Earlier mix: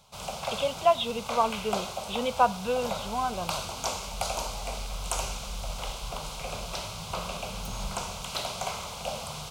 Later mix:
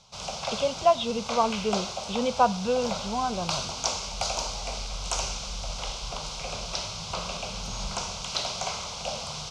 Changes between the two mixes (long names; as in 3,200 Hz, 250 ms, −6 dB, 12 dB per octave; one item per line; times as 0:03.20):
speech: add spectral tilt −2.5 dB per octave
master: add low-pass with resonance 5,700 Hz, resonance Q 2.4